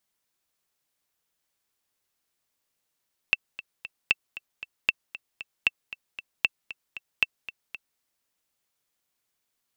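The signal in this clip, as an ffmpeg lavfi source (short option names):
-f lavfi -i "aevalsrc='pow(10,(-6.5-16.5*gte(mod(t,3*60/231),60/231))/20)*sin(2*PI*2670*mod(t,60/231))*exp(-6.91*mod(t,60/231)/0.03)':d=4.67:s=44100"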